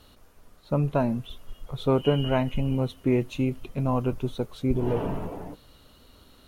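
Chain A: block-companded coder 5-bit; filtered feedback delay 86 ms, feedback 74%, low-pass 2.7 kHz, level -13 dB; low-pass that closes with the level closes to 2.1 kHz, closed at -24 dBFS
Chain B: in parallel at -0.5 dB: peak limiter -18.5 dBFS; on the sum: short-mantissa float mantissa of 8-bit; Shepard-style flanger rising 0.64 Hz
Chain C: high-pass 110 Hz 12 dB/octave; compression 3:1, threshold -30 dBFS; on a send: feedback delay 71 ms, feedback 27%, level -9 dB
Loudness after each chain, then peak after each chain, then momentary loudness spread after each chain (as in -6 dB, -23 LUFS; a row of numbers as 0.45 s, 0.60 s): -27.0 LUFS, -27.0 LUFS, -34.0 LUFS; -8.5 dBFS, -10.5 dBFS, -18.0 dBFS; 14 LU, 12 LU, 9 LU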